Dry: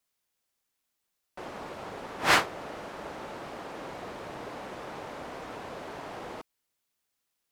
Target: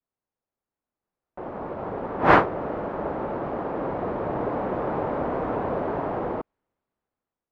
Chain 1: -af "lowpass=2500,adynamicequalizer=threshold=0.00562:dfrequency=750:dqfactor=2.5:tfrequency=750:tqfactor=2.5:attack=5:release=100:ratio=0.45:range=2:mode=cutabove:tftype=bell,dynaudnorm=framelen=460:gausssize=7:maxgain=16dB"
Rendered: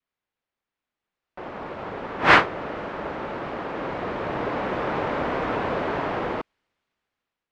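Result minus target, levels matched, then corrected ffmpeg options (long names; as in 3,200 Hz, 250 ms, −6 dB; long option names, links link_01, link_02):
2,000 Hz band +5.5 dB
-af "lowpass=970,adynamicequalizer=threshold=0.00562:dfrequency=750:dqfactor=2.5:tfrequency=750:tqfactor=2.5:attack=5:release=100:ratio=0.45:range=2:mode=cutabove:tftype=bell,dynaudnorm=framelen=460:gausssize=7:maxgain=16dB"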